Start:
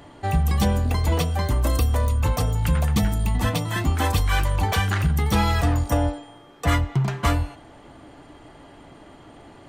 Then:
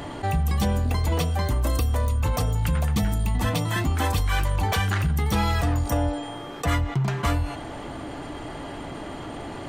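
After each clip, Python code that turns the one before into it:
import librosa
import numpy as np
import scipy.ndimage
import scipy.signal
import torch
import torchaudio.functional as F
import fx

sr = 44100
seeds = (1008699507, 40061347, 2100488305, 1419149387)

y = fx.env_flatten(x, sr, amount_pct=50)
y = y * 10.0 ** (-4.0 / 20.0)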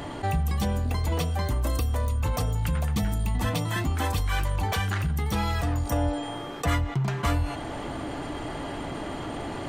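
y = fx.rider(x, sr, range_db=4, speed_s=0.5)
y = y * 10.0 ** (-2.5 / 20.0)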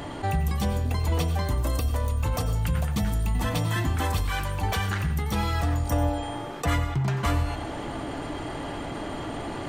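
y = fx.rev_plate(x, sr, seeds[0], rt60_s=0.56, hf_ratio=0.85, predelay_ms=80, drr_db=9.5)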